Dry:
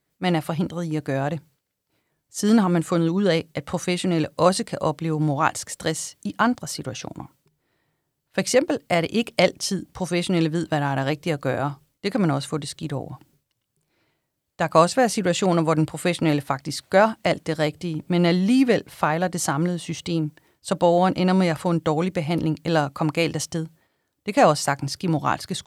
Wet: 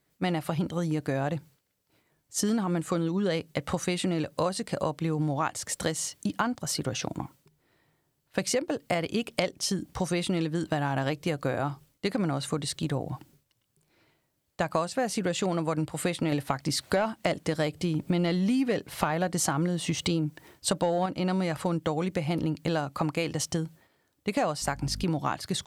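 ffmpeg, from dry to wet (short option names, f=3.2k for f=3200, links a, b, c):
-filter_complex "[0:a]asettb=1/sr,asplit=3[a][b][c];[a]atrim=end=16.324[d];[b]atrim=start=16.32:end=21.06,asetpts=PTS-STARTPTS,afade=t=in:d=0.004:c=qsin,afade=t=out:st=4.736:d=0.004:c=qsin,acontrast=65[e];[c]atrim=start=21.056[f];[d][e]acrossfade=d=0.004:c1=hsin:c2=qsin[g];[g][f]acrossfade=d=0.004:c1=qsin:c2=hsin,asettb=1/sr,asplit=3[h][i][j];[h]atrim=end=24.624[k];[i]atrim=start=24.62:end=25.04,asetpts=PTS-STARTPTS,afade=t=in:d=0.004:c=qsin,afade=t=out:st=0.416:d=0.004:c=qsin,aeval=exprs='val(0)+0.0158*(sin(2*PI*50*n/s)+sin(2*PI*2*50*n/s)/2+sin(2*PI*3*50*n/s)/3+sin(2*PI*4*50*n/s)/4+sin(2*PI*5*50*n/s)/5)':c=same[l];[j]atrim=start=25.036[m];[k][l]acrossfade=d=0.004:c1=hsin:c2=qsin[n];[n][m]acrossfade=d=0.004:c1=qsin:c2=hsin,acompressor=threshold=-27dB:ratio=6,volume=2dB"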